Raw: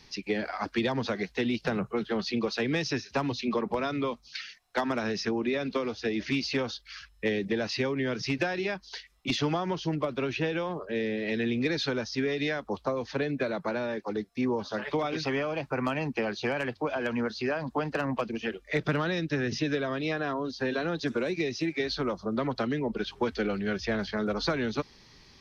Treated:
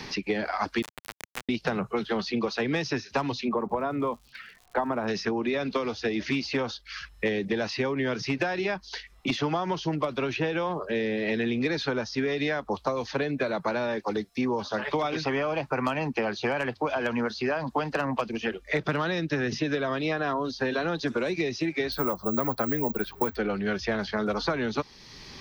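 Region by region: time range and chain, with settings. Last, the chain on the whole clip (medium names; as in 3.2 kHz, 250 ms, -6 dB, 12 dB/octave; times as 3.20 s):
0.82–1.49 s: high-pass 810 Hz + compression 20:1, threshold -44 dBFS + companded quantiser 2-bit
3.48–5.07 s: Chebyshev low-pass 1 kHz + crackle 180 per s -59 dBFS
21.92–23.37 s: peaking EQ 3 kHz -6.5 dB 0.28 oct + careless resampling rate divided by 2×, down none, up zero stuff
whole clip: dynamic bell 930 Hz, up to +5 dB, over -42 dBFS, Q 1.1; three bands compressed up and down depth 70%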